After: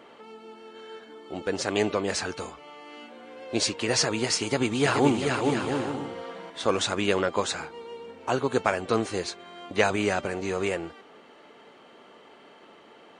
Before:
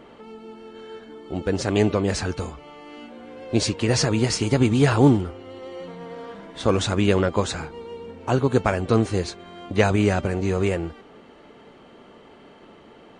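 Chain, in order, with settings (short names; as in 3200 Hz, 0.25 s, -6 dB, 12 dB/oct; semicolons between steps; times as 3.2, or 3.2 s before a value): HPF 560 Hz 6 dB/oct; 4.42–6.5 bouncing-ball echo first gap 0.43 s, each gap 0.6×, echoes 5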